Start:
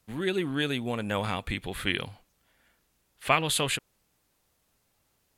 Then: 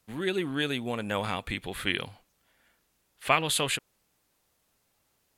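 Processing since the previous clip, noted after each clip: bass shelf 160 Hz -5 dB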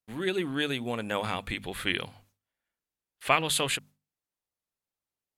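gate with hold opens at -53 dBFS; hum notches 50/100/150/200/250 Hz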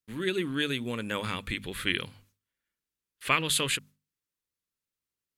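peaking EQ 730 Hz -14 dB 0.6 oct; trim +1 dB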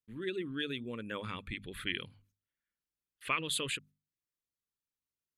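resonances exaggerated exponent 1.5; trim -7.5 dB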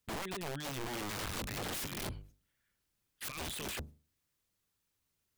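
octave divider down 1 oct, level +3 dB; compressor with a negative ratio -43 dBFS, ratio -1; integer overflow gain 40 dB; trim +5.5 dB

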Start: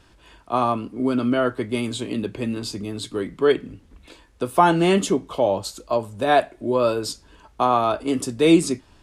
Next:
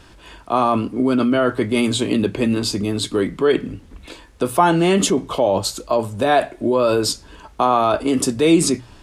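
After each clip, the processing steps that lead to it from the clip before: hum notches 60/120 Hz; in parallel at 0 dB: compressor with a negative ratio -25 dBFS, ratio -1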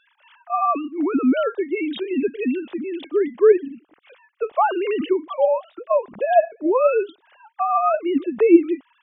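formants replaced by sine waves; trim -2 dB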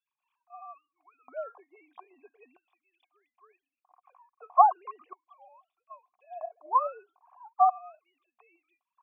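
LFO high-pass square 0.39 Hz 990–3300 Hz; cascade formant filter a; trim +4 dB

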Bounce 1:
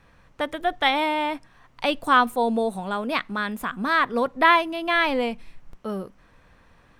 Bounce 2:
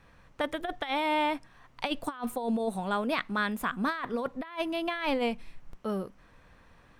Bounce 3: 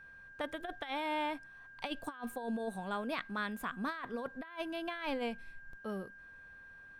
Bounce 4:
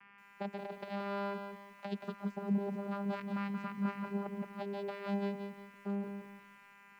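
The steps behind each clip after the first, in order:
compressor with a negative ratio -24 dBFS, ratio -0.5; trim -5 dB
whistle 1.6 kHz -44 dBFS; trim -8 dB
vocoder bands 8, saw 200 Hz; bit-crushed delay 177 ms, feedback 35%, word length 11-bit, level -6.5 dB; trim +2 dB

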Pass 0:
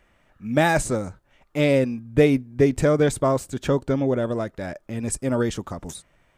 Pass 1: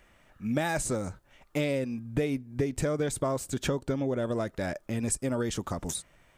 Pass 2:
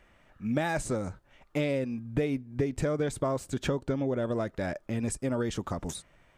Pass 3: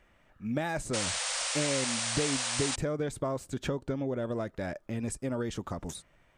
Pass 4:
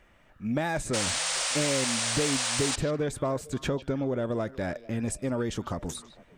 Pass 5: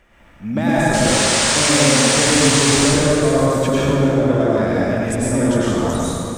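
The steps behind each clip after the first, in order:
treble shelf 4 kHz +5.5 dB; compression 6:1, threshold -26 dBFS, peak gain reduction 14 dB
treble shelf 6.1 kHz -10 dB
painted sound noise, 0.93–2.76 s, 480–9600 Hz -30 dBFS; trim -3 dB
saturation -21 dBFS, distortion -22 dB; repeats whose band climbs or falls 151 ms, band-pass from 3.6 kHz, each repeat -1.4 oct, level -12 dB; trim +4 dB
reverberation RT60 2.8 s, pre-delay 88 ms, DRR -8.5 dB; trim +4.5 dB

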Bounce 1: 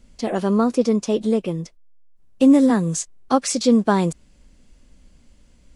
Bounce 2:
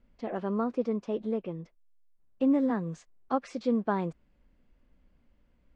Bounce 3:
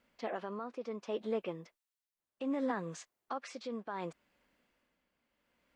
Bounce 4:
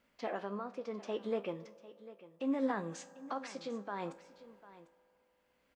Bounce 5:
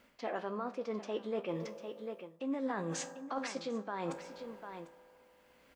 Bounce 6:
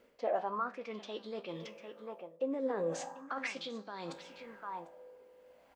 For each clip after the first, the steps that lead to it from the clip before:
low-pass 2 kHz 12 dB/octave; bass shelf 350 Hz -4.5 dB; trim -9 dB
high-pass 1.1 kHz 6 dB/octave; peak limiter -31 dBFS, peak gain reduction 11 dB; tremolo 0.68 Hz, depth 60%; trim +7 dB
feedback comb 67 Hz, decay 0.27 s, harmonics all, mix 60%; delay 748 ms -17 dB; on a send at -19 dB: reverberation RT60 3.6 s, pre-delay 3 ms; on the sum: trim +4.5 dB
reverse; compression 4:1, threshold -46 dBFS, peak gain reduction 15 dB; reverse; hum notches 50/100/150/200 Hz; trim +10.5 dB
sweeping bell 0.38 Hz 440–4500 Hz +16 dB; trim -5.5 dB

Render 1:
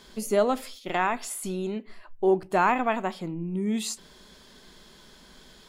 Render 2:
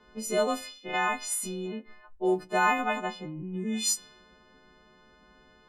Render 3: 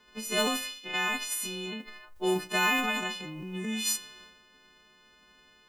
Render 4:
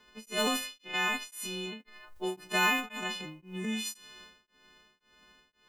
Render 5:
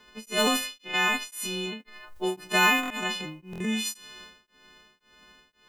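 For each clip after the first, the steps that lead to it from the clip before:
partials quantised in pitch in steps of 3 st; level-controlled noise filter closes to 1.3 kHz, open at -18 dBFS; trim -4 dB
formants flattened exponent 0.6; transient shaper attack +1 dB, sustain +8 dB; trim -2.5 dB
tremolo of two beating tones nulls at 1.9 Hz
buffer glitch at 2.81/3.51 s, samples 1024, times 3; trim +5.5 dB

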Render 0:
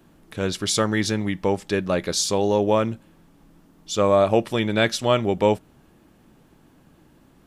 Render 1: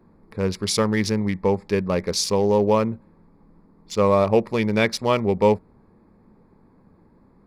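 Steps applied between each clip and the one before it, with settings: local Wiener filter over 15 samples; rippled EQ curve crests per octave 0.87, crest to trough 7 dB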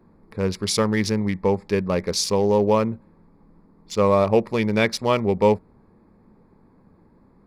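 no audible change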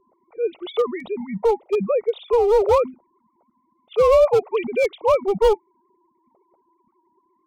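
formants replaced by sine waves; hard clipper -15.5 dBFS, distortion -12 dB; static phaser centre 700 Hz, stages 4; trim +6.5 dB

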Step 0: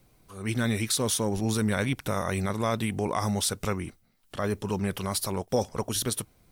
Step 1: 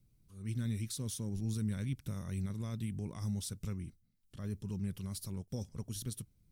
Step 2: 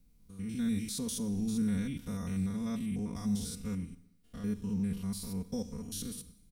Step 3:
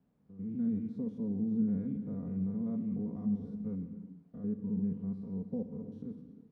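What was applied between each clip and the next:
FFT filter 160 Hz 0 dB, 740 Hz -22 dB, 5.6 kHz -9 dB; trim -5.5 dB
spectrogram pixelated in time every 100 ms; comb 4.2 ms, depth 88%; Schroeder reverb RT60 0.83 s, combs from 31 ms, DRR 14.5 dB; trim +4 dB
added noise blue -55 dBFS; Butterworth band-pass 280 Hz, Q 0.56; gated-style reverb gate 380 ms flat, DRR 9 dB

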